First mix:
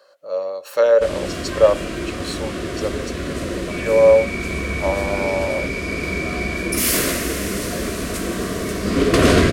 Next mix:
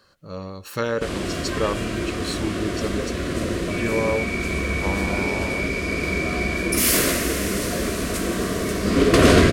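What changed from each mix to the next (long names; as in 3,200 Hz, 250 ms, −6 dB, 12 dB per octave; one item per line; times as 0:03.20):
speech: remove high-pass with resonance 570 Hz, resonance Q 5.9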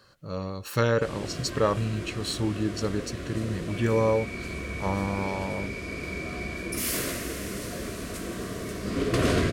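background −10.5 dB
master: add parametric band 120 Hz +9 dB 0.31 octaves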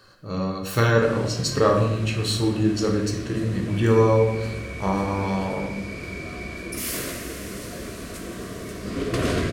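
speech: send on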